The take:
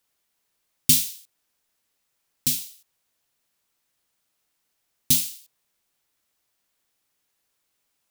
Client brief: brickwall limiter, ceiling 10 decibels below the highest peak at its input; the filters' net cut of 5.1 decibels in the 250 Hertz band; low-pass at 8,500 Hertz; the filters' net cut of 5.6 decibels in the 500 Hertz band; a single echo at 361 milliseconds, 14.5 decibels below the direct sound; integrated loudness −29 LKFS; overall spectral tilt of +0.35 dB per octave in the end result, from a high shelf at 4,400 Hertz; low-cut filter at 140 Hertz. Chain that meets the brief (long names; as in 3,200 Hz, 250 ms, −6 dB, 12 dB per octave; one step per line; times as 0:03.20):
high-pass filter 140 Hz
low-pass filter 8,500 Hz
parametric band 250 Hz −4 dB
parametric band 500 Hz −6 dB
high-shelf EQ 4,400 Hz +7 dB
brickwall limiter −13.5 dBFS
single-tap delay 361 ms −14.5 dB
level −0.5 dB